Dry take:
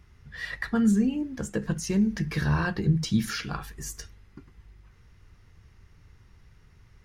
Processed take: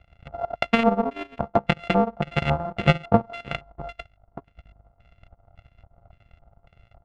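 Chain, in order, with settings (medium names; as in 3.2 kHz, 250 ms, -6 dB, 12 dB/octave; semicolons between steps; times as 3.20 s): sorted samples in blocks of 64 samples; LFO low-pass square 1.8 Hz 920–2700 Hz; transient shaper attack +12 dB, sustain -11 dB; trim -4 dB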